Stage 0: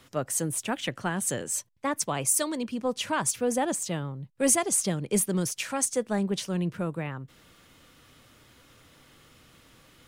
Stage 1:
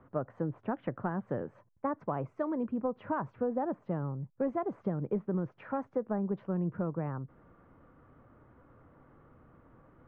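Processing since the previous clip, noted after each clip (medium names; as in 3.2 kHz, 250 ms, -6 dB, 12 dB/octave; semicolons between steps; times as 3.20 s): low-pass 1.3 kHz 24 dB/octave; compression 6:1, threshold -28 dBFS, peak gain reduction 8.5 dB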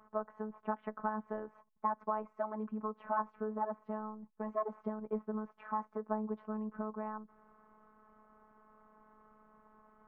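peaking EQ 1 kHz +12.5 dB 1.2 oct; robot voice 215 Hz; trim -6 dB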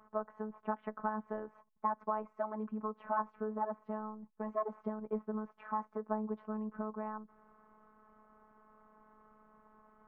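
no audible change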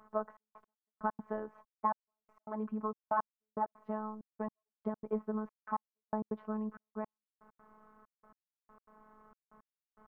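trance gate "xxxx..x....x.x" 164 bpm -60 dB; trim +2 dB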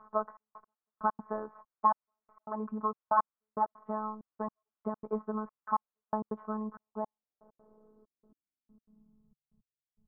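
low-pass sweep 1.2 kHz -> 120 Hz, 6.60–9.60 s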